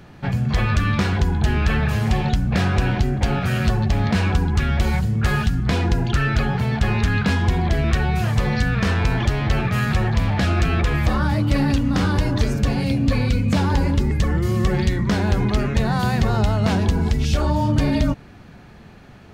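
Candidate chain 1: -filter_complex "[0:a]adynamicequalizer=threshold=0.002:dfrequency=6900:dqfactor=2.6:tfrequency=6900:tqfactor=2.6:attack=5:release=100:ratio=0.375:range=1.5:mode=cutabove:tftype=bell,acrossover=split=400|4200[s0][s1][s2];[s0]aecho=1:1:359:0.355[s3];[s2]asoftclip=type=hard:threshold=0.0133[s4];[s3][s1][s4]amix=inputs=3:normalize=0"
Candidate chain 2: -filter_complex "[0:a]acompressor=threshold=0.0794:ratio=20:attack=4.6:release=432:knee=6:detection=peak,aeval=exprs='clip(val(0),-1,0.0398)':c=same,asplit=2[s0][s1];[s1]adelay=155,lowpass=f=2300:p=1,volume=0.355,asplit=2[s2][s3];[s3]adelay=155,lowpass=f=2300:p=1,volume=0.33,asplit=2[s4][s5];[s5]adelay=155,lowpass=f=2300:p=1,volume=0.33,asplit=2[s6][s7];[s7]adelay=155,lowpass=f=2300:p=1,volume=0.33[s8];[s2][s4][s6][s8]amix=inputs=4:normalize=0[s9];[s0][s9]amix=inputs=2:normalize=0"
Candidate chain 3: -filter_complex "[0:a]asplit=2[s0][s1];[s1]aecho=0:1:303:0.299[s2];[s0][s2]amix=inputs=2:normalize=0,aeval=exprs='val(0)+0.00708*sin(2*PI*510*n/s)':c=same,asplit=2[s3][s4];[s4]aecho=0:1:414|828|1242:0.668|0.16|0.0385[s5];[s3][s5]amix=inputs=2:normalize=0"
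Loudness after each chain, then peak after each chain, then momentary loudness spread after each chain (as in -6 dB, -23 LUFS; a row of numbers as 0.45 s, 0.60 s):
-20.0 LUFS, -30.0 LUFS, -18.5 LUFS; -5.5 dBFS, -15.5 dBFS, -4.0 dBFS; 2 LU, 2 LU, 2 LU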